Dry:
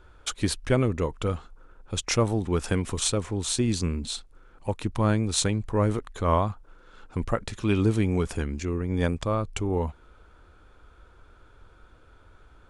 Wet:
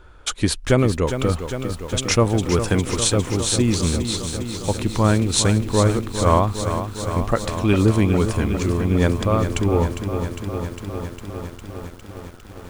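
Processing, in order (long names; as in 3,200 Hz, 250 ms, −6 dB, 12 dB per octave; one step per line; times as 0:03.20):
feedback echo at a low word length 405 ms, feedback 80%, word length 8 bits, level −9 dB
level +6 dB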